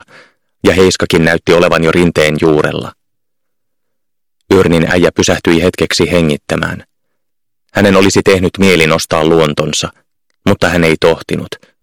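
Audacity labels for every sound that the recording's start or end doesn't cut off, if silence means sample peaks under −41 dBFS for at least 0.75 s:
4.410000	6.840000	sound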